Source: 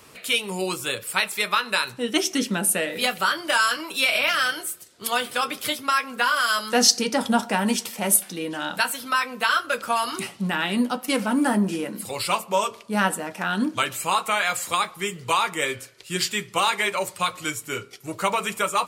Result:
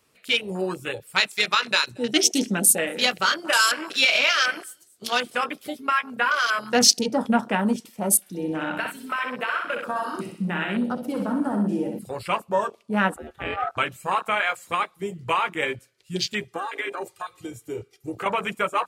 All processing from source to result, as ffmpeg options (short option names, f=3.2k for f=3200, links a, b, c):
-filter_complex "[0:a]asettb=1/sr,asplit=3[a][b][c];[a]atrim=end=1.154[d];[b]atrim=start=1.15:end=5.44,asetpts=PTS-STARTPTS,afade=t=in:d=0.004:c=qsin,afade=t=out:st=4.286:d=0.004:c=qsin,equalizer=f=6.8k:t=o:w=1.3:g=8,aecho=1:1:227:0.141,atrim=end_sample=189189[e];[c]atrim=start=5.436[f];[d][e]acrossfade=d=0.004:c1=hsin:c2=qsin[g];[g][f]acrossfade=d=0.004:c1=qsin:c2=hsin,asettb=1/sr,asplit=3[h][i][j];[h]atrim=end=8.204[k];[i]atrim=start=8.2:end=11.99,asetpts=PTS-STARTPTS,afade=t=in:d=0.004:c=qsin,afade=t=out:st=3.786:d=0.004:c=qsin,acompressor=threshold=-22dB:ratio=4:attack=3.2:release=140:knee=1:detection=peak,aecho=1:1:63|126|189|252|315|378|441:0.562|0.315|0.176|0.0988|0.0553|0.031|0.0173,atrim=end_sample=167139[l];[j]atrim=start=11.986[m];[k][l]acrossfade=d=0.004:c1=hsin:c2=qsin[n];[n][m]acrossfade=d=0.004:c1=qsin:c2=hsin,asettb=1/sr,asplit=3[o][p][q];[o]atrim=end=13.164[r];[p]atrim=start=13.16:end=13.77,asetpts=PTS-STARTPTS,afade=t=in:d=0.004:c=qsin,afade=t=out:st=0.606:d=0.004:c=qsin,acrossover=split=3000[s][t];[t]acompressor=threshold=-51dB:ratio=4:attack=1:release=60[u];[s][u]amix=inputs=2:normalize=0,highshelf=f=12k:g=8.5,aeval=exprs='val(0)*sin(2*PI*1000*n/s)':c=same[v];[q]atrim=start=13.766[w];[r][v]acrossfade=d=0.004:c1=hsin:c2=qsin[x];[x][w]acrossfade=d=0.004:c1=qsin:c2=hsin,asettb=1/sr,asplit=3[y][z][aa];[y]atrim=end=16.414[ab];[z]atrim=start=16.41:end=18.26,asetpts=PTS-STARTPTS,afade=t=in:d=0.004:c=qsin,afade=t=out:st=1.846:d=0.004:c=qsin,aecho=1:1:2.5:0.78,atrim=end_sample=81585,acompressor=threshold=-25dB:ratio=5:attack=3.2:release=140:knee=1:detection=peak[ac];[aa]atrim=start=18.256[ad];[ab][ac]acrossfade=d=0.004:c1=hsin:c2=qsin[ae];[ae][ad]acrossfade=d=0.004:c1=qsin:c2=hsin,afwtdn=0.0398,equalizer=f=970:w=1.5:g=-2.5,volume=1dB"